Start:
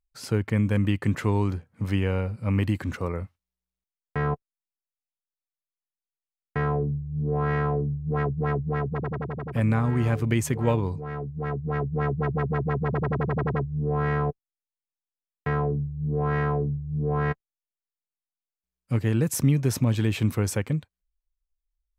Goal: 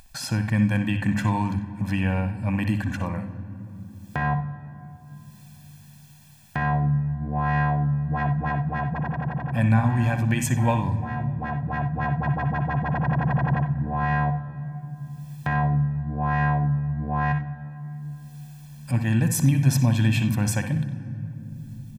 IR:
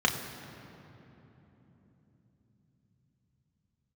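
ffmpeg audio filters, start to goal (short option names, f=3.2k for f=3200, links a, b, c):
-filter_complex "[0:a]lowshelf=f=68:g=-11.5,bandreject=f=50:t=h:w=6,bandreject=f=100:t=h:w=6,bandreject=f=150:t=h:w=6,aecho=1:1:1.2:0.99,acompressor=mode=upward:threshold=-27dB:ratio=2.5,asplit=2[a][b];[1:a]atrim=start_sample=2205,adelay=60[c];[b][c]afir=irnorm=-1:irlink=0,volume=-19.5dB[d];[a][d]amix=inputs=2:normalize=0"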